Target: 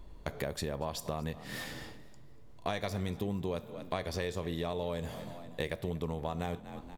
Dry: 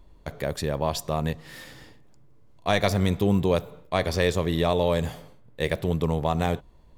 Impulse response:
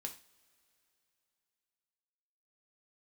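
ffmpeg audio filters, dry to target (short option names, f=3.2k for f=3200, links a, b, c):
-filter_complex "[0:a]asplit=4[a][b][c][d];[b]adelay=238,afreqshift=43,volume=-20.5dB[e];[c]adelay=476,afreqshift=86,volume=-29.1dB[f];[d]adelay=714,afreqshift=129,volume=-37.8dB[g];[a][e][f][g]amix=inputs=4:normalize=0,asplit=2[h][i];[1:a]atrim=start_sample=2205[j];[i][j]afir=irnorm=-1:irlink=0,volume=-6dB[k];[h][k]amix=inputs=2:normalize=0,acompressor=threshold=-33dB:ratio=6"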